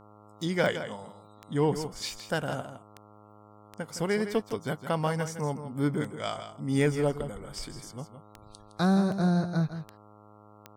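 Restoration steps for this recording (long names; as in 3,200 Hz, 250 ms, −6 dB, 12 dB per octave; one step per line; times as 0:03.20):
click removal
hum removal 104.9 Hz, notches 13
echo removal 163 ms −10.5 dB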